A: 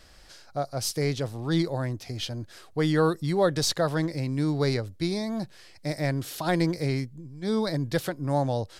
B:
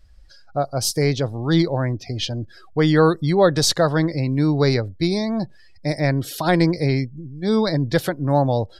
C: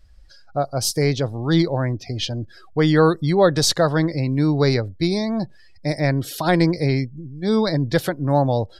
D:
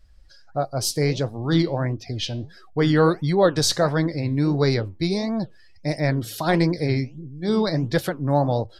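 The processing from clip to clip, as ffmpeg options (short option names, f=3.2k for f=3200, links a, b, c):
-af "afftdn=nr=21:nf=-46,volume=7.5dB"
-af anull
-af "flanger=delay=4.4:depth=9.7:regen=-76:speed=1.5:shape=sinusoidal,volume=2dB"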